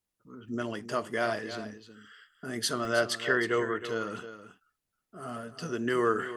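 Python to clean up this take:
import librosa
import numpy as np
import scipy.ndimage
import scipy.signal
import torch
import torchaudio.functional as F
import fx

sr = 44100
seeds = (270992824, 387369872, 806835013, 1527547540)

y = fx.fix_interpolate(x, sr, at_s=(2.85,), length_ms=1.1)
y = fx.fix_echo_inverse(y, sr, delay_ms=316, level_db=-12.0)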